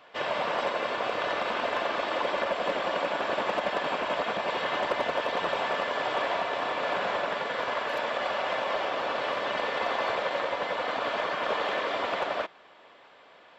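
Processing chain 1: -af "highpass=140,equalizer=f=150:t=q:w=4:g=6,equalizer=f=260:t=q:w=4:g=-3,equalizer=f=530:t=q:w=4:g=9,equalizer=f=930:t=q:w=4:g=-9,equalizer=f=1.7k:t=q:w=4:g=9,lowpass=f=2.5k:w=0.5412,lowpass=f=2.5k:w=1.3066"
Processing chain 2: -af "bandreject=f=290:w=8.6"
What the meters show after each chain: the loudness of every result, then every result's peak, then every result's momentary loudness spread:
-26.0, -29.5 LUFS; -10.5, -18.0 dBFS; 2, 2 LU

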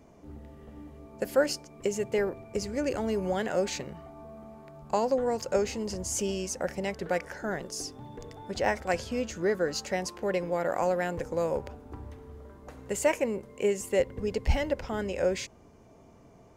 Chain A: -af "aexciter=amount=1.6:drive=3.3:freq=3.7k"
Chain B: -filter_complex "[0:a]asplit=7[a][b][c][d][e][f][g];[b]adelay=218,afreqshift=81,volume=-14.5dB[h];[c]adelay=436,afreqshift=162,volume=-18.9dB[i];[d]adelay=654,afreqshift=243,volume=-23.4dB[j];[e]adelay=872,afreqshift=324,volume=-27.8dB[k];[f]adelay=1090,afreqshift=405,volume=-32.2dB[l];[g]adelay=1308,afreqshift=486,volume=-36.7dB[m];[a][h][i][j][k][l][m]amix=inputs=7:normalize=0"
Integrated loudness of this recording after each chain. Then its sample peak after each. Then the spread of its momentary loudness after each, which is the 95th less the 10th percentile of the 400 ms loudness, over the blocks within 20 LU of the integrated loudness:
-30.5, -30.5 LUFS; -12.5, -12.5 dBFS; 20, 19 LU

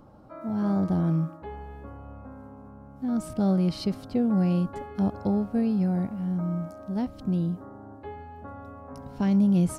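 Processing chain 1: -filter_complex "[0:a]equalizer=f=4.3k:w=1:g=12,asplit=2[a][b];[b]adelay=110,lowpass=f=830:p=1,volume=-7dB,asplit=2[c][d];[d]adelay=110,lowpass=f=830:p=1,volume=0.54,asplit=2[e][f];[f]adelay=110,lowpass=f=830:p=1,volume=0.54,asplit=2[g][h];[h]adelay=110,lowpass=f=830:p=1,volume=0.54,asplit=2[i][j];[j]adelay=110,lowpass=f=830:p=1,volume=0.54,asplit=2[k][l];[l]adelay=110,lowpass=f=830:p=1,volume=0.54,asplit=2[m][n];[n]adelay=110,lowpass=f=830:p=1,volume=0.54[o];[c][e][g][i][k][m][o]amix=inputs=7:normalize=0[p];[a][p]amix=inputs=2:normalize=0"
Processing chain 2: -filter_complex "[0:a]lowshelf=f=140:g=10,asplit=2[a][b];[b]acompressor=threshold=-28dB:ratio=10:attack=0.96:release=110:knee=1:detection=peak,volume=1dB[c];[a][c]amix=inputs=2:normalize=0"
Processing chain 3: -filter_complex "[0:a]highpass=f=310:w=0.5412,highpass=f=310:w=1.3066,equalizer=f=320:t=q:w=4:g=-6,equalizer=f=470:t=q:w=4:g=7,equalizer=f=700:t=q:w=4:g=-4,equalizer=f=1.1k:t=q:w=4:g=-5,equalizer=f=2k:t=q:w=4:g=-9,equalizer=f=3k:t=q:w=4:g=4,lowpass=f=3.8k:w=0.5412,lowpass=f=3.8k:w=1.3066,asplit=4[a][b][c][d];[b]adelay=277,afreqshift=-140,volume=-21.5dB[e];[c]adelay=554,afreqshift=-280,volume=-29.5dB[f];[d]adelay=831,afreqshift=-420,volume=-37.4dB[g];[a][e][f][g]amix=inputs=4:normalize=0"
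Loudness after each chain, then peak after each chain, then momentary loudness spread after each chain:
-25.5, -21.5, -36.5 LUFS; -10.0, -9.5, -17.5 dBFS; 19, 15, 17 LU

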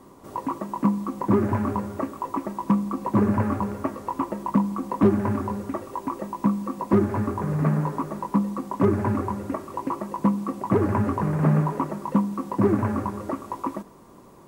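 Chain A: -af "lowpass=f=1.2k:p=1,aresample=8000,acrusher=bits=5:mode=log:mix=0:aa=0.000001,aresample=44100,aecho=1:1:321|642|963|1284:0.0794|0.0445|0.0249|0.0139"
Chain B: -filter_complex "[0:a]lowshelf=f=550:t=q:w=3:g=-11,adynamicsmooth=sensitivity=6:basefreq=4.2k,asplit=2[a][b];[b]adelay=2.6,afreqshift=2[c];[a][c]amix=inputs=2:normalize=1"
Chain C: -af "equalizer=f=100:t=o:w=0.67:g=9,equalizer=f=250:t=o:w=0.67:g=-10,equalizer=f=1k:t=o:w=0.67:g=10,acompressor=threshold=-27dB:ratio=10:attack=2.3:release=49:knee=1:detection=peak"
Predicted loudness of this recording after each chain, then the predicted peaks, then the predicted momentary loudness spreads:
-25.5, -32.0, -32.0 LUFS; -9.5, -11.5, -17.5 dBFS; 11, 6, 3 LU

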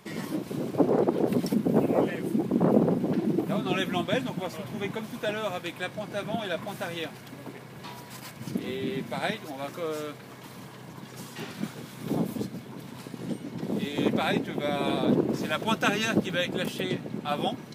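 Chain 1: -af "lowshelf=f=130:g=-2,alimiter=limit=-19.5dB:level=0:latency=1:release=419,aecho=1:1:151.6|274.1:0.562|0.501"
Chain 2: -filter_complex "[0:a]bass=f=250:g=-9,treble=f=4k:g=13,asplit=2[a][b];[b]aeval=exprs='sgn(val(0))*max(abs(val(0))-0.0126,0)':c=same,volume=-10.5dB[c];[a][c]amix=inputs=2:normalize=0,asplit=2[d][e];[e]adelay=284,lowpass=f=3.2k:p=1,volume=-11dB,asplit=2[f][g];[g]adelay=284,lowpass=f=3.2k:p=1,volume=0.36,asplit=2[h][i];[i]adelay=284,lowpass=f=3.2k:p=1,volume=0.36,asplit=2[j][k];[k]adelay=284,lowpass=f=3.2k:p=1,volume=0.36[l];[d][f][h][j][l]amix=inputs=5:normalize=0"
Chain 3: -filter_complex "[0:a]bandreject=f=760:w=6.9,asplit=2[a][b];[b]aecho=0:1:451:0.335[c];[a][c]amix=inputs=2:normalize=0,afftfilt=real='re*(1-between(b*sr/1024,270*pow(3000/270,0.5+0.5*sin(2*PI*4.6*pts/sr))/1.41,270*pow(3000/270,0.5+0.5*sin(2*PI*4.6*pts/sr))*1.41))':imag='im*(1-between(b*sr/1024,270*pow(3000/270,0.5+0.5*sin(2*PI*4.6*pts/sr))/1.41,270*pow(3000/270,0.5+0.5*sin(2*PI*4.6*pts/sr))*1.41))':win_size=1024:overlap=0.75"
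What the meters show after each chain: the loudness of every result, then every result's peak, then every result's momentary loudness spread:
-32.0, -28.0, -30.0 LUFS; -16.0, -5.0, -8.5 dBFS; 10, 14, 16 LU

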